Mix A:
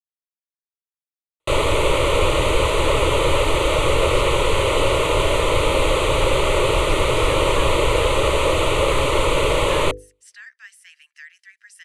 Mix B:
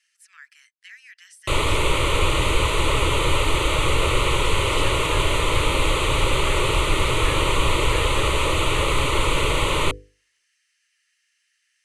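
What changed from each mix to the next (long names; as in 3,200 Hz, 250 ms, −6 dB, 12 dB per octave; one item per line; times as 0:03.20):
speech: entry −2.45 s
master: add parametric band 570 Hz −9 dB 1 octave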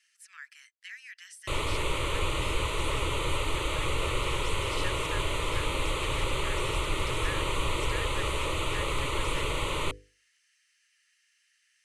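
background −9.5 dB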